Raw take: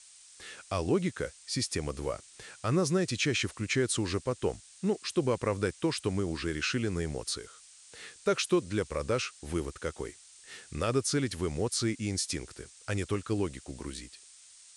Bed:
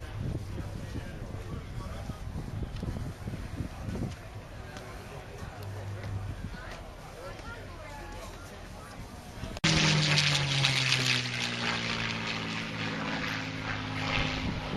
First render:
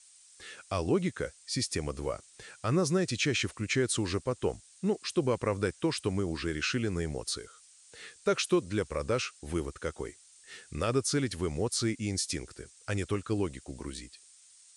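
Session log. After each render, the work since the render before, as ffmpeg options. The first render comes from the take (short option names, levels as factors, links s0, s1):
-af "afftdn=nr=6:nf=-55"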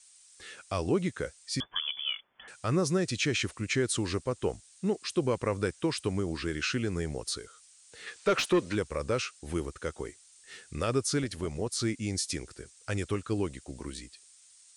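-filter_complex "[0:a]asettb=1/sr,asplit=3[s0][s1][s2];[s0]atrim=end=1.604[s3];[s1]atrim=start=1.6:end=2.48,asetpts=PTS-STARTPTS,afade=t=in:d=0.004:c=qsin,afade=t=out:st=0.876:d=0.004:c=qsin,lowpass=f=3000:t=q:w=0.5098,lowpass=f=3000:t=q:w=0.6013,lowpass=f=3000:t=q:w=0.9,lowpass=f=3000:t=q:w=2.563,afreqshift=-3500[s4];[s2]atrim=start=2.476[s5];[s3][s4]acrossfade=d=0.004:c1=hsin:c2=qsin[s6];[s6][s5]acrossfade=d=0.004:c1=qsin:c2=hsin,asplit=3[s7][s8][s9];[s7]afade=t=out:st=8.06:d=0.02[s10];[s8]asplit=2[s11][s12];[s12]highpass=f=720:p=1,volume=7.94,asoftclip=type=tanh:threshold=0.168[s13];[s11][s13]amix=inputs=2:normalize=0,lowpass=f=2100:p=1,volume=0.501,afade=t=in:st=8.06:d=0.02,afade=t=out:st=8.74:d=0.02[s14];[s9]afade=t=in:st=8.74:d=0.02[s15];[s10][s14][s15]amix=inputs=3:normalize=0,asplit=3[s16][s17][s18];[s16]afade=t=out:st=11.21:d=0.02[s19];[s17]tremolo=f=220:d=0.462,afade=t=in:st=11.21:d=0.02,afade=t=out:st=11.78:d=0.02[s20];[s18]afade=t=in:st=11.78:d=0.02[s21];[s19][s20][s21]amix=inputs=3:normalize=0"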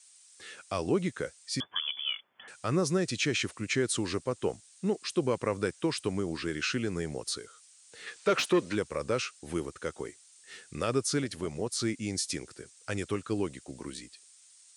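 -af "highpass=120"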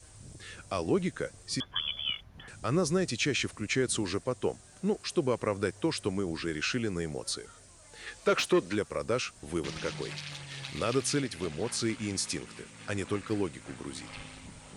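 -filter_complex "[1:a]volume=0.168[s0];[0:a][s0]amix=inputs=2:normalize=0"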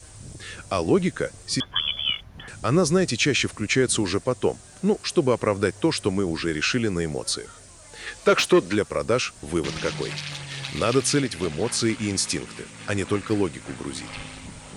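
-af "volume=2.51"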